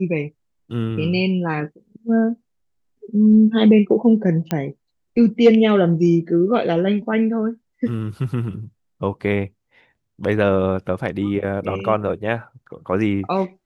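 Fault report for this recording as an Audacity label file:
4.510000	4.510000	click −8 dBFS

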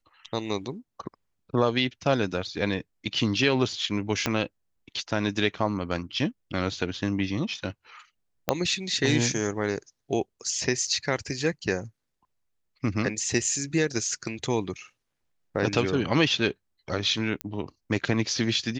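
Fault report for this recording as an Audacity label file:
4.260000	4.260000	click −9 dBFS
8.490000	8.490000	click −7 dBFS
10.870000	10.870000	drop-out 4.8 ms
17.410000	17.410000	click −15 dBFS

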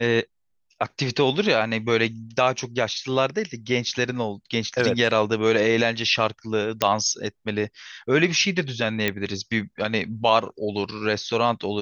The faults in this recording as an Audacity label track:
6.820000	6.820000	click −4 dBFS
9.080000	9.080000	click −8 dBFS

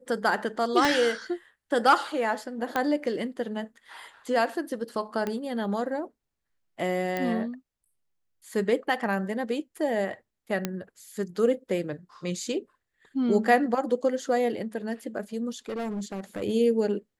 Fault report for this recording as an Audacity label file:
0.850000	0.850000	click −10 dBFS
2.760000	2.760000	click −13 dBFS
5.270000	5.270000	click −17 dBFS
7.170000	7.170000	click −16 dBFS
10.650000	10.650000	click −12 dBFS
15.690000	16.430000	clipping −28.5 dBFS

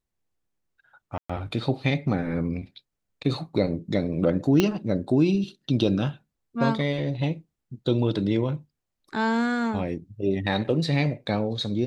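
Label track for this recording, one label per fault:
1.180000	1.290000	drop-out 115 ms
4.600000	4.600000	click −7 dBFS

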